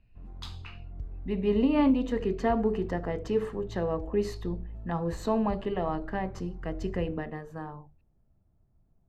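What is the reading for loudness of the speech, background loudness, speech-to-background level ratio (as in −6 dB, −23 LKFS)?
−30.0 LKFS, −44.5 LKFS, 14.5 dB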